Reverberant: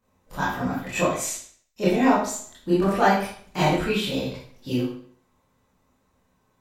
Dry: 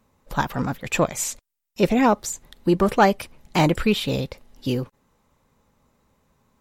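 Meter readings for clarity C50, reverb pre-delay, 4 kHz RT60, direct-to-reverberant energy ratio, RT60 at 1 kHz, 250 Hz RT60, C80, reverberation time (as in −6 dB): 2.0 dB, 21 ms, 0.50 s, −10.5 dB, 0.50 s, 0.55 s, 6.0 dB, 0.55 s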